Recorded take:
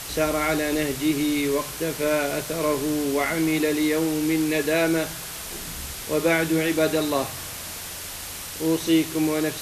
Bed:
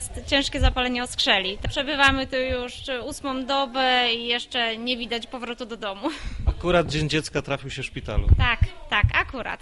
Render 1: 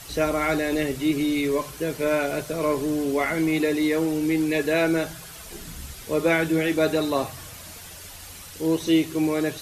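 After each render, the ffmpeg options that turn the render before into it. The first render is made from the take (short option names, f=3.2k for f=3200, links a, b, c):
-af "afftdn=nr=9:nf=-35"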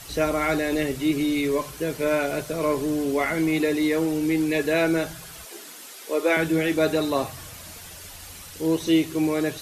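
-filter_complex "[0:a]asettb=1/sr,asplit=3[a][b][c];[a]atrim=end=5.454[d];[b]atrim=start=5.45:end=6.37,asetpts=PTS-STARTPTS,afade=t=in:d=0.004:c=qsin,afade=t=out:st=0.916:d=0.004:c=qsin,highpass=f=310:w=0.5412,highpass=f=310:w=1.3066[e];[c]atrim=start=6.366[f];[d][e]acrossfade=d=0.004:c1=hsin:c2=qsin[g];[g][f]acrossfade=d=0.004:c1=qsin:c2=hsin"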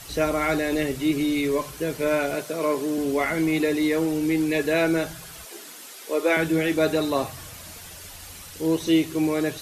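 -filter_complex "[0:a]asettb=1/sr,asplit=3[a][b][c];[a]atrim=end=2.354[d];[b]atrim=start=2.35:end=2.98,asetpts=PTS-STARTPTS,afade=t=in:d=0.004:c=qsin,afade=t=out:st=0.626:d=0.004:c=qsin,highpass=210[e];[c]atrim=start=2.976[f];[d][e]acrossfade=d=0.004:c1=hsin:c2=qsin[g];[g][f]acrossfade=d=0.004:c1=qsin:c2=hsin"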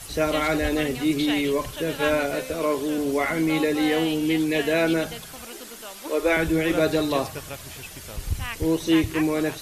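-filter_complex "[1:a]volume=-11dB[a];[0:a][a]amix=inputs=2:normalize=0"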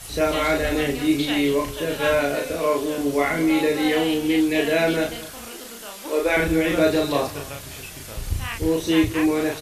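-filter_complex "[0:a]asplit=2[a][b];[b]adelay=35,volume=-2.5dB[c];[a][c]amix=inputs=2:normalize=0,asplit=2[d][e];[e]adelay=221.6,volume=-17dB,highshelf=f=4k:g=-4.99[f];[d][f]amix=inputs=2:normalize=0"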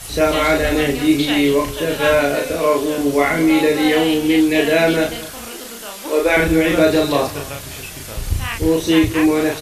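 -af "volume=5.5dB,alimiter=limit=-3dB:level=0:latency=1"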